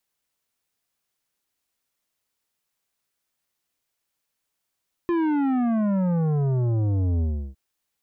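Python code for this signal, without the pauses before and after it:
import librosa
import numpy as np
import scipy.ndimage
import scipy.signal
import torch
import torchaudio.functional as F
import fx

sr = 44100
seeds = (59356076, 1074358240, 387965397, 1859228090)

y = fx.sub_drop(sr, level_db=-21.0, start_hz=350.0, length_s=2.46, drive_db=11.0, fade_s=0.34, end_hz=65.0)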